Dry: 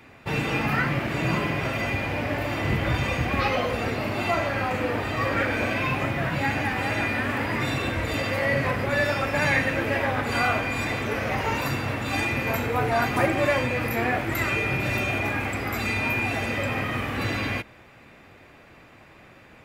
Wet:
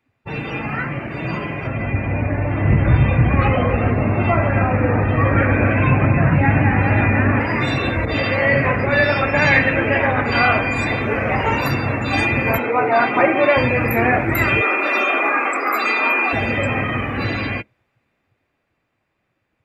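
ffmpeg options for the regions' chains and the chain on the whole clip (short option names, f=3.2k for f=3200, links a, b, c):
-filter_complex "[0:a]asettb=1/sr,asplit=3[a][b][c];[a]atrim=end=1.674[d];[b]atrim=start=1.67:end=7.4,asetpts=PTS-STARTPTS,afade=t=in:d=0.004:c=qsin,afade=t=out:st=5.726:d=0.004:c=qsin,bass=f=250:g=8,treble=f=4k:g=-14,aecho=1:1:280:0.398,atrim=end_sample=252693[e];[c]atrim=start=7.396[f];[d][e]acrossfade=d=0.004:c1=hsin:c2=qsin[g];[g][f]acrossfade=d=0.004:c1=qsin:c2=hsin,asettb=1/sr,asplit=3[h][i][j];[h]atrim=end=8.054[k];[i]atrim=start=8.05:end=10.58,asetpts=PTS-STARTPTS,afade=t=in:d=0.004:c=qsin,afade=t=out:st=2.526:d=0.004:c=qsin,lowpass=f=3.7k:p=1,adynamicequalizer=threshold=0.02:dfrequency=1900:dqfactor=0.7:tfrequency=1900:tqfactor=0.7:attack=5:release=100:ratio=0.375:range=2:mode=boostabove:tftype=highshelf[l];[j]atrim=start=10.576[m];[k][l]acrossfade=d=0.004:c1=hsin:c2=qsin[n];[n][m]acrossfade=d=0.004:c1=qsin:c2=hsin,asettb=1/sr,asplit=3[o][p][q];[o]atrim=end=12.584[r];[p]atrim=start=12.58:end=13.57,asetpts=PTS-STARTPTS,afade=t=in:d=0.004:c=qsin,afade=t=out:st=0.986:d=0.004:c=qsin,highpass=260,lowpass=4.6k,bandreject=f=1.7k:w=17[s];[q]atrim=start=13.566[t];[r][s]acrossfade=d=0.004:c1=hsin:c2=qsin[u];[u][t]acrossfade=d=0.004:c1=qsin:c2=hsin,asettb=1/sr,asplit=3[v][w][x];[v]atrim=end=14.614[y];[w]atrim=start=14.61:end=16.33,asetpts=PTS-STARTPTS,afade=t=in:d=0.004:c=qsin,afade=t=out:st=1.716:d=0.004:c=qsin,highpass=f=310:w=0.5412,highpass=f=310:w=1.3066,equalizer=f=1.2k:w=3.8:g=9.5[z];[x]atrim=start=16.326[aa];[y][z]acrossfade=d=0.004:c1=hsin:c2=qsin[ab];[ab][aa]acrossfade=d=0.004:c1=qsin:c2=hsin,afftdn=nr=22:nf=-34,dynaudnorm=f=260:g=21:m=10dB"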